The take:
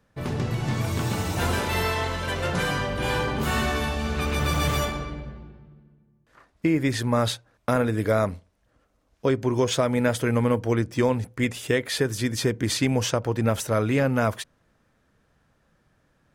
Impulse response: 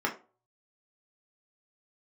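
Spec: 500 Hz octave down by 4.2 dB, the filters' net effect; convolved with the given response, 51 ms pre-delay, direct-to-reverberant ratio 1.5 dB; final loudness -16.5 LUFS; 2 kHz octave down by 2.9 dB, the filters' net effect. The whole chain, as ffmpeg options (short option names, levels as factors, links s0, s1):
-filter_complex "[0:a]equalizer=f=500:t=o:g=-5,equalizer=f=2000:t=o:g=-3.5,asplit=2[s0][s1];[1:a]atrim=start_sample=2205,adelay=51[s2];[s1][s2]afir=irnorm=-1:irlink=0,volume=0.299[s3];[s0][s3]amix=inputs=2:normalize=0,volume=2.66"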